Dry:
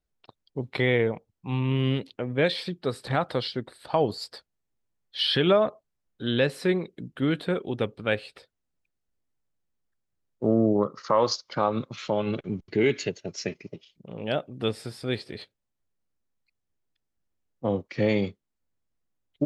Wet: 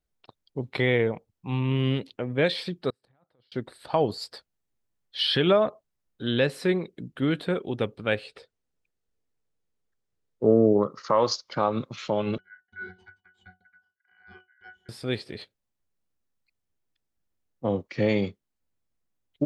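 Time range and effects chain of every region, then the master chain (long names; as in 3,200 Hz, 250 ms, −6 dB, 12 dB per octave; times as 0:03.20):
0:02.90–0:03.52: high-shelf EQ 2,300 Hz −9.5 dB + compressor whose output falls as the input rises −30 dBFS + gate with flip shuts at −33 dBFS, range −35 dB
0:08.24–0:10.78: low-pass filter 9,400 Hz + parametric band 450 Hz +8.5 dB 0.29 octaves
0:12.38–0:14.89: ring modulation 1,800 Hz + resonances in every octave F#, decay 0.18 s
whole clip: no processing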